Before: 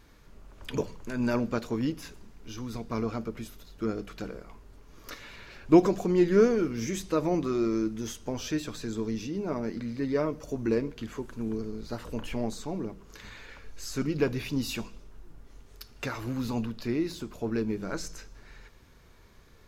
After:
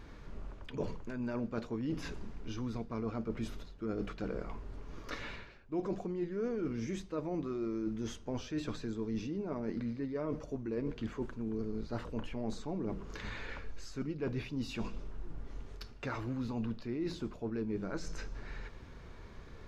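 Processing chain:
high-shelf EQ 5,600 Hz +5 dB
reversed playback
downward compressor 10 to 1, threshold −40 dBFS, peak gain reduction 26.5 dB
reversed playback
head-to-tape spacing loss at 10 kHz 21 dB
level +7 dB

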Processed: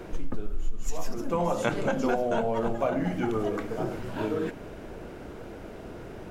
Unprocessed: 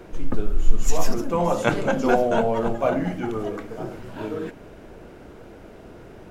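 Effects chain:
downward compressor 4 to 1, threshold −26 dBFS, peak gain reduction 17.5 dB
level +2 dB

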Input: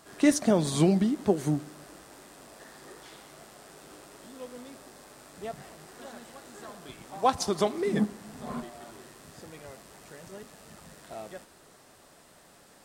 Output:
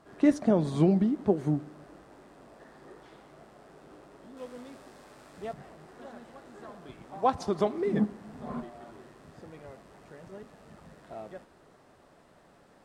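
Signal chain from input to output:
low-pass filter 1,000 Hz 6 dB per octave, from 0:04.37 2,800 Hz, from 0:05.53 1,300 Hz

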